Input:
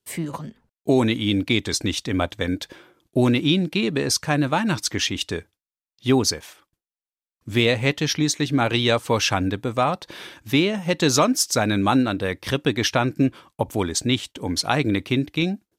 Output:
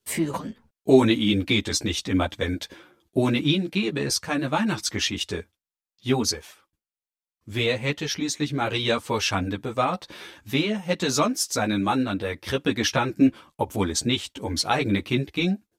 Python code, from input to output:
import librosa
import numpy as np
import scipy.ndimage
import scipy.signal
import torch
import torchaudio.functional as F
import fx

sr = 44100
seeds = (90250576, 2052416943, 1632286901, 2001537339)

y = fx.rider(x, sr, range_db=10, speed_s=2.0)
y = fx.ensemble(y, sr)